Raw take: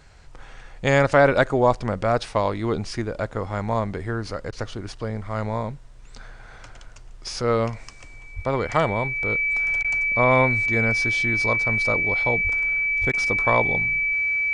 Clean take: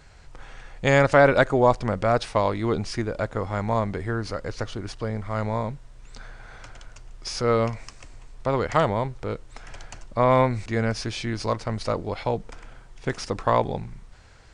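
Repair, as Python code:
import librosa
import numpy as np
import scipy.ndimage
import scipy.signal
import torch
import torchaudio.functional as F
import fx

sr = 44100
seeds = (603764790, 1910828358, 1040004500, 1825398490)

y = fx.notch(x, sr, hz=2300.0, q=30.0)
y = fx.fix_deplosive(y, sr, at_s=(8.35, 12.43, 13.0))
y = fx.fix_interpolate(y, sr, at_s=(4.51, 9.83, 13.12), length_ms=13.0)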